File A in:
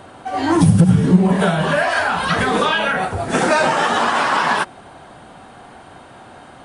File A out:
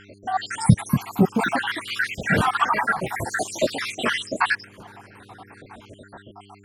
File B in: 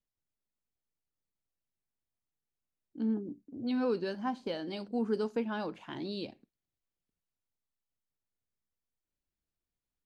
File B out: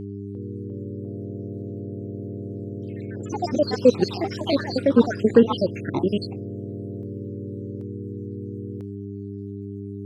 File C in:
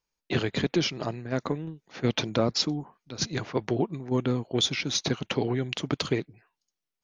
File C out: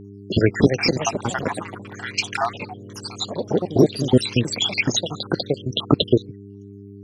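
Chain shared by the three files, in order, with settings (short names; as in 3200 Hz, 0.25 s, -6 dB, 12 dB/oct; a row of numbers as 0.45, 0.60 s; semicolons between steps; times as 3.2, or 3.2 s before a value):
random spectral dropouts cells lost 82%; buzz 100 Hz, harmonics 4, -53 dBFS -2 dB/oct; echoes that change speed 0.35 s, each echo +3 st, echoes 3, each echo -6 dB; normalise peaks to -1.5 dBFS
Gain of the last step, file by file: +1.5, +19.5, +13.0 dB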